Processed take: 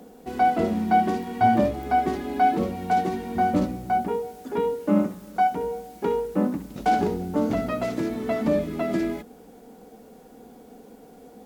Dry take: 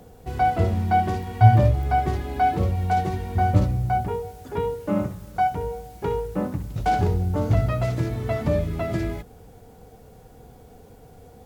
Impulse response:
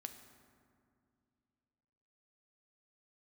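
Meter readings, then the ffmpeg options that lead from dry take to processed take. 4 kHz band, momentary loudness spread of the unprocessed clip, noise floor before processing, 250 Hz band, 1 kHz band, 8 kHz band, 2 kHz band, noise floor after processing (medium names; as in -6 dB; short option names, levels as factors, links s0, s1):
0.0 dB, 10 LU, -48 dBFS, +4.0 dB, +0.5 dB, no reading, 0.0 dB, -49 dBFS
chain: -af "lowshelf=f=160:t=q:w=3:g=-12.5"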